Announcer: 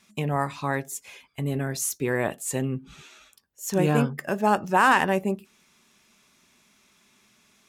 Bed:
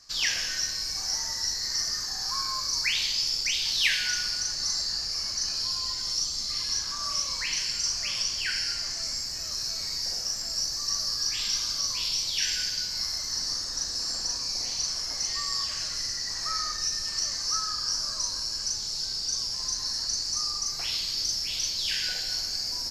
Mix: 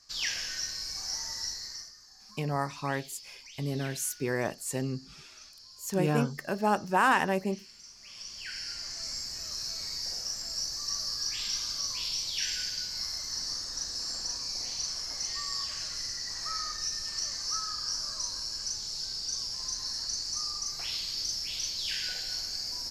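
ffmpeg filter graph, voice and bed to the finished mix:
ffmpeg -i stem1.wav -i stem2.wav -filter_complex "[0:a]adelay=2200,volume=-5dB[link_01];[1:a]volume=12.5dB,afade=type=out:start_time=1.42:duration=0.51:silence=0.141254,afade=type=in:start_time=7.98:duration=1.21:silence=0.125893[link_02];[link_01][link_02]amix=inputs=2:normalize=0" out.wav

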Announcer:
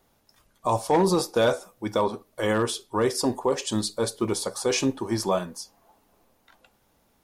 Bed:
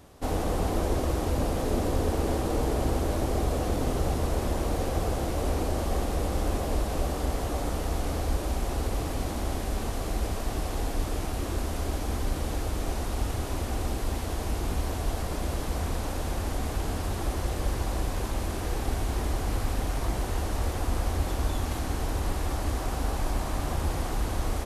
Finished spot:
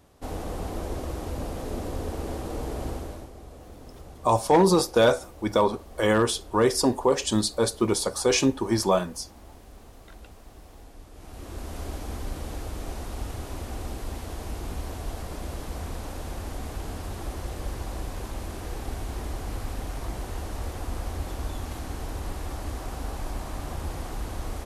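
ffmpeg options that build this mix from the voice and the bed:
ffmpeg -i stem1.wav -i stem2.wav -filter_complex "[0:a]adelay=3600,volume=2.5dB[link_01];[1:a]volume=8dB,afade=type=out:start_time=2.88:duration=0.43:silence=0.237137,afade=type=in:start_time=11.13:duration=0.67:silence=0.211349[link_02];[link_01][link_02]amix=inputs=2:normalize=0" out.wav

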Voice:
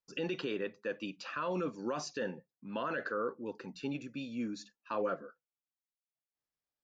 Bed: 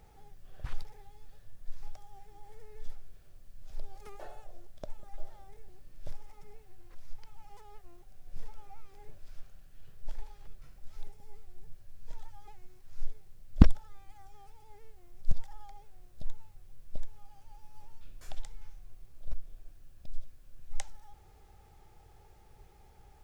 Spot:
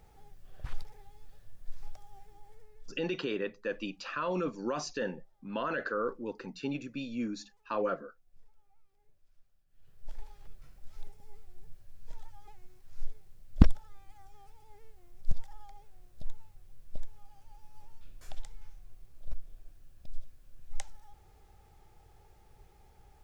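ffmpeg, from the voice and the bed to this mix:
ffmpeg -i stem1.wav -i stem2.wav -filter_complex "[0:a]adelay=2800,volume=2.5dB[link_01];[1:a]volume=18.5dB,afade=type=out:start_time=2.2:duration=0.83:silence=0.1,afade=type=in:start_time=9.65:duration=0.63:silence=0.105925[link_02];[link_01][link_02]amix=inputs=2:normalize=0" out.wav

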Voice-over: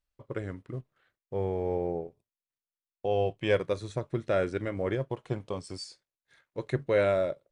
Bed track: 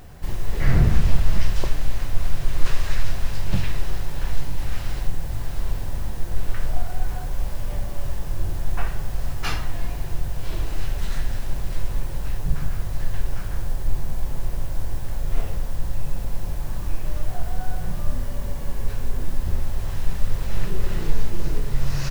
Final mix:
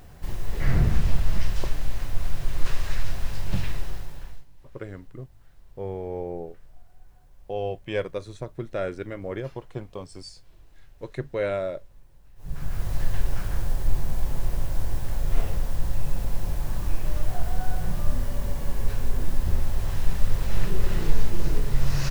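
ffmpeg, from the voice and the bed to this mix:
ffmpeg -i stem1.wav -i stem2.wav -filter_complex "[0:a]adelay=4450,volume=-2dB[link_01];[1:a]volume=23.5dB,afade=type=out:start_time=3.71:duration=0.74:silence=0.0668344,afade=type=in:start_time=12.36:duration=0.55:silence=0.0421697[link_02];[link_01][link_02]amix=inputs=2:normalize=0" out.wav

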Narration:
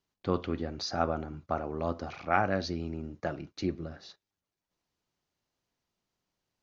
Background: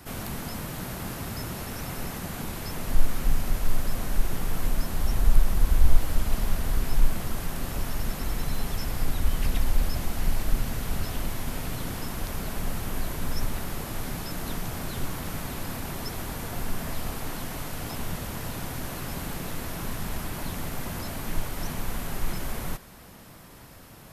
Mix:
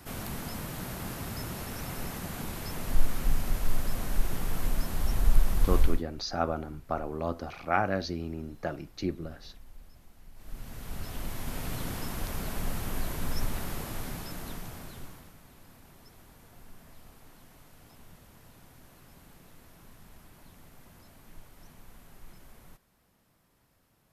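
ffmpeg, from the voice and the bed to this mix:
ffmpeg -i stem1.wav -i stem2.wav -filter_complex "[0:a]adelay=5400,volume=0dB[link_01];[1:a]volume=21.5dB,afade=type=out:start_time=5.79:duration=0.24:silence=0.0630957,afade=type=in:start_time=10.34:duration=1.41:silence=0.0595662,afade=type=out:start_time=13.7:duration=1.64:silence=0.11885[link_02];[link_01][link_02]amix=inputs=2:normalize=0" out.wav

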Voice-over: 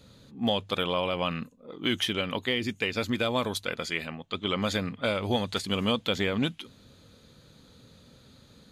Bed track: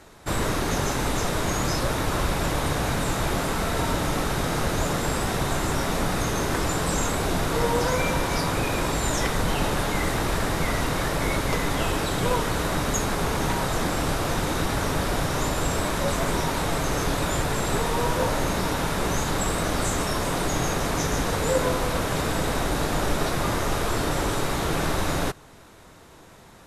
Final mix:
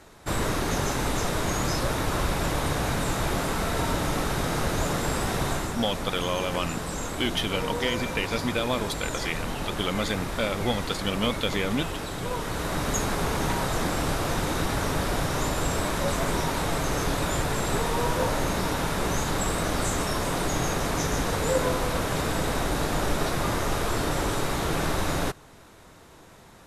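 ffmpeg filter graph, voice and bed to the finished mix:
ffmpeg -i stem1.wav -i stem2.wav -filter_complex "[0:a]adelay=5350,volume=0dB[link_01];[1:a]volume=4.5dB,afade=type=out:start_time=5.49:duration=0.26:silence=0.501187,afade=type=in:start_time=12.3:duration=0.66:silence=0.501187[link_02];[link_01][link_02]amix=inputs=2:normalize=0" out.wav

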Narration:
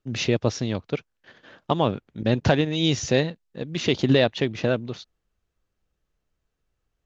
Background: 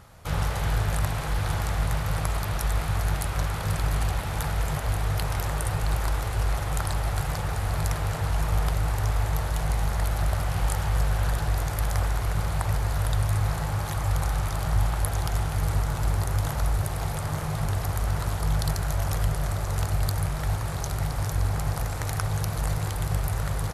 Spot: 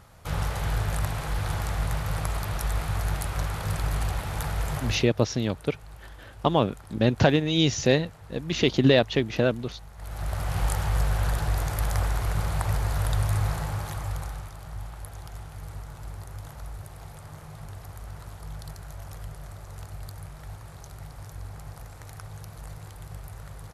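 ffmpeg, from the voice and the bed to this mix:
ffmpeg -i stem1.wav -i stem2.wav -filter_complex "[0:a]adelay=4750,volume=0dB[link_01];[1:a]volume=17.5dB,afade=type=out:start_time=4.82:duration=0.27:silence=0.125893,afade=type=in:start_time=9.96:duration=0.63:silence=0.105925,afade=type=out:start_time=13.4:duration=1.13:silence=0.211349[link_02];[link_01][link_02]amix=inputs=2:normalize=0" out.wav

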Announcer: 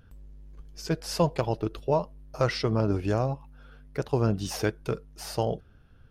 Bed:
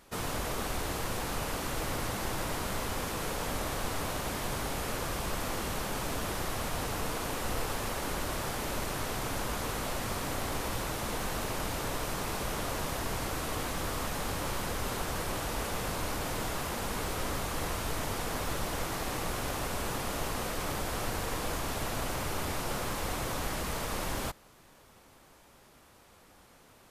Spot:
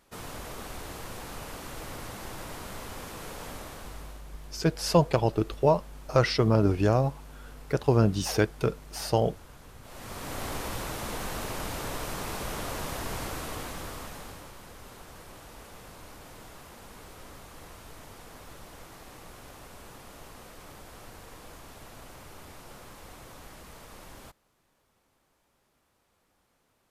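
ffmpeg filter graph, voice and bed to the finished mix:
ffmpeg -i stem1.wav -i stem2.wav -filter_complex "[0:a]adelay=3750,volume=3dB[link_01];[1:a]volume=12dB,afade=type=out:start_time=3.47:duration=0.78:silence=0.237137,afade=type=in:start_time=9.82:duration=0.63:silence=0.125893,afade=type=out:start_time=13.21:duration=1.31:silence=0.223872[link_02];[link_01][link_02]amix=inputs=2:normalize=0" out.wav

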